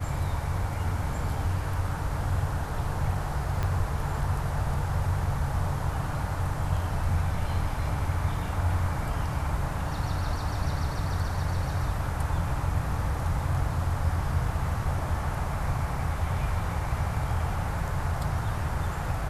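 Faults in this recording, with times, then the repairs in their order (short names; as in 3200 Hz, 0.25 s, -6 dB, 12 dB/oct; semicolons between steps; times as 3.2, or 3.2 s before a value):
3.63 pop -16 dBFS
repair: de-click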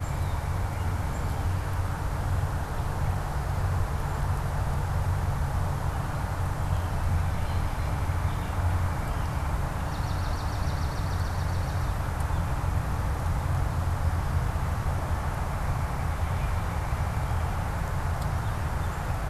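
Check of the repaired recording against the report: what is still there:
3.63 pop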